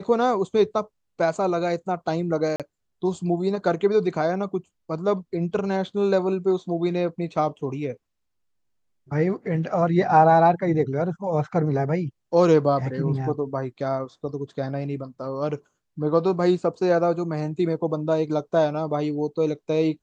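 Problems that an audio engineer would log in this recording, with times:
2.56–2.60 s: dropout 37 ms

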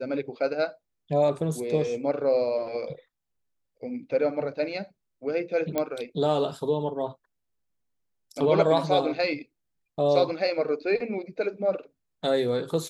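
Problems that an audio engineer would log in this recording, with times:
5.78 s: pop -12 dBFS

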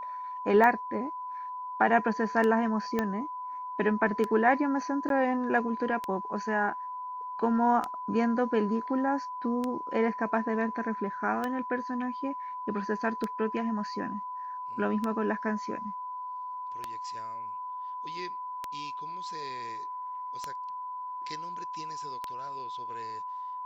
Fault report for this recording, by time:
tick 33 1/3 rpm -18 dBFS
whine 1 kHz -35 dBFS
2.99 s: pop -15 dBFS
5.09–5.10 s: dropout 12 ms

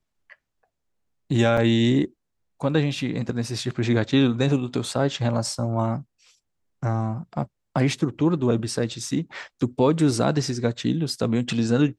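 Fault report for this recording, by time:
1.57 s: dropout 4.8 ms

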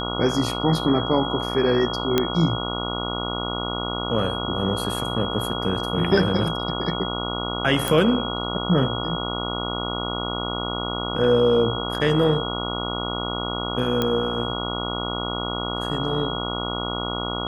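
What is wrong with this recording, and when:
buzz 60 Hz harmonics 24 -29 dBFS
whine 3.3 kHz -30 dBFS
2.18 s: pop -5 dBFS
7.88 s: pop
14.02 s: pop -9 dBFS

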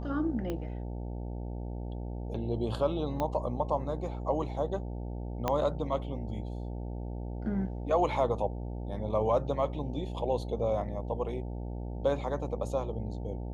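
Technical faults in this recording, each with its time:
buzz 60 Hz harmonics 15 -37 dBFS
0.50 s: pop -22 dBFS
3.20 s: pop -19 dBFS
5.48 s: pop -15 dBFS

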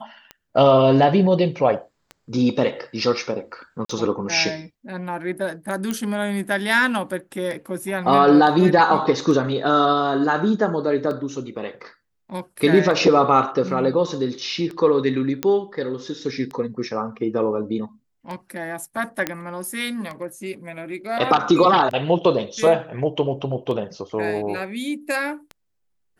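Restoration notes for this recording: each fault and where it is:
tick 33 1/3 rpm -20 dBFS
3.85–3.89 s: dropout 44 ms
5.91 s: pop -12 dBFS
15.43 s: pop -8 dBFS
19.27 s: pop -7 dBFS

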